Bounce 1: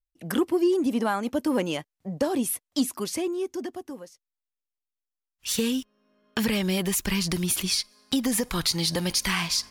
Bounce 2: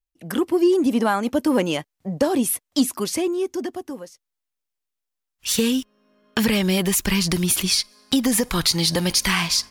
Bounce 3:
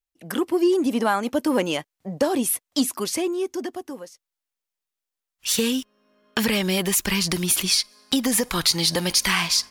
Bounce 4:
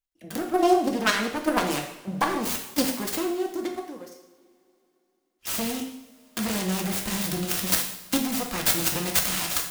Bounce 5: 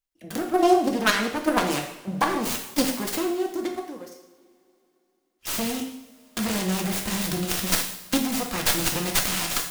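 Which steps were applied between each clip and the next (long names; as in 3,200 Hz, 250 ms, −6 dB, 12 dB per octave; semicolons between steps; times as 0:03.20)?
automatic gain control gain up to 5.5 dB
low-shelf EQ 220 Hz −7.5 dB
phase distortion by the signal itself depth 0.79 ms; output level in coarse steps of 10 dB; coupled-rooms reverb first 0.72 s, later 3.3 s, from −22 dB, DRR 1.5 dB
stylus tracing distortion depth 0.069 ms; level +1.5 dB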